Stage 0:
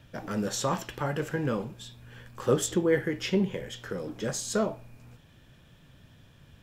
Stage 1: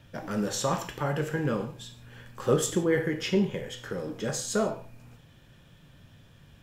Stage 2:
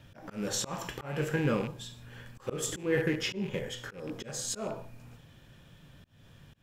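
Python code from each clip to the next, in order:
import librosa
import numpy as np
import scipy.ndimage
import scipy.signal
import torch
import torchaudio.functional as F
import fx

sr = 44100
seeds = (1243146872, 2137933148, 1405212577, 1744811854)

y1 = fx.rev_gated(x, sr, seeds[0], gate_ms=190, shape='falling', drr_db=6.5)
y2 = fx.rattle_buzz(y1, sr, strikes_db=-35.0, level_db=-32.0)
y2 = fx.auto_swell(y2, sr, attack_ms=240.0)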